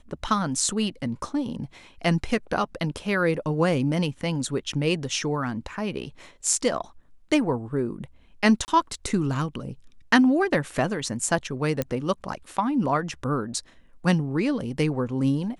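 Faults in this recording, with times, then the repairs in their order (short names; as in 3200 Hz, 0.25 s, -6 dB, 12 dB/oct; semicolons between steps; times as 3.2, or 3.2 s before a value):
8.65–8.68 gap 29 ms
11.82 pop -12 dBFS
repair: de-click; interpolate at 8.65, 29 ms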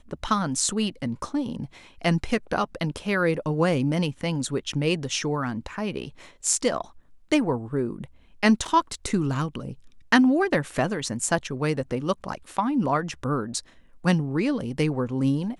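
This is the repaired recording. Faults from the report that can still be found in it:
none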